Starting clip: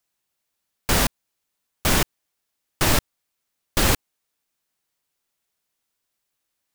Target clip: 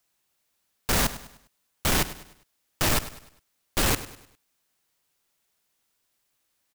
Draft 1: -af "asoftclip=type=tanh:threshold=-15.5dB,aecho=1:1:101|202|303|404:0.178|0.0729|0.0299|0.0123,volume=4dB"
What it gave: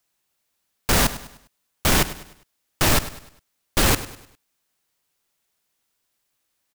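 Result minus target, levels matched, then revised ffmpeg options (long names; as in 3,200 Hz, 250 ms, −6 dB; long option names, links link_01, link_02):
soft clipping: distortion −6 dB
-af "asoftclip=type=tanh:threshold=-24dB,aecho=1:1:101|202|303|404:0.178|0.0729|0.0299|0.0123,volume=4dB"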